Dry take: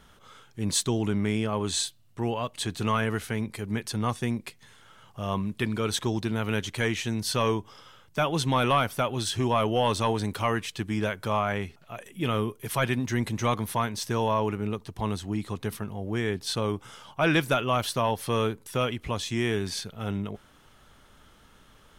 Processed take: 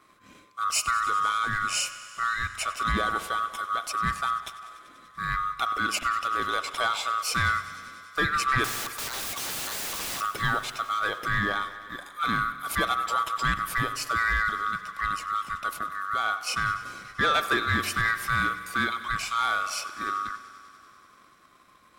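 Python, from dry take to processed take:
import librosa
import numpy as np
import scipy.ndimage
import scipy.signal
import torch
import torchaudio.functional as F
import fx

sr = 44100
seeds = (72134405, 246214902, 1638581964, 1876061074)

p1 = fx.band_swap(x, sr, width_hz=1000)
p2 = fx.leveller(p1, sr, passes=1)
p3 = fx.overflow_wrap(p2, sr, gain_db=25.5, at=(8.64, 10.21))
p4 = p3 + fx.echo_thinned(p3, sr, ms=97, feedback_pct=82, hz=180.0, wet_db=-18, dry=0)
p5 = fx.rev_spring(p4, sr, rt60_s=1.3, pass_ms=(43,), chirp_ms=70, drr_db=13.5)
y = p5 * 10.0 ** (-3.0 / 20.0)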